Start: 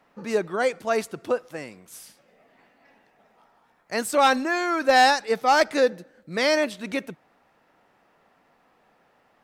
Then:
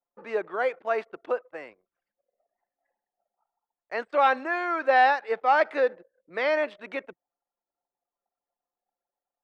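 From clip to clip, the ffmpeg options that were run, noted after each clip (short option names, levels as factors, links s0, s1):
-filter_complex "[0:a]acrossover=split=4500[s0][s1];[s1]acompressor=threshold=0.00398:ratio=4:attack=1:release=60[s2];[s0][s2]amix=inputs=2:normalize=0,acrossover=split=360 3000:gain=0.0891 1 0.141[s3][s4][s5];[s3][s4][s5]amix=inputs=3:normalize=0,anlmdn=0.01,volume=0.841"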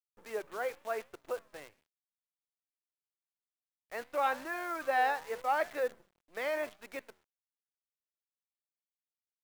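-af "flanger=delay=7.6:depth=7:regen=-88:speed=0.88:shape=triangular,acrusher=bits=8:dc=4:mix=0:aa=0.000001,volume=0.562"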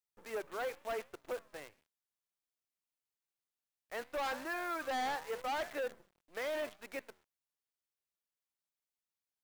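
-af "asoftclip=type=hard:threshold=0.02"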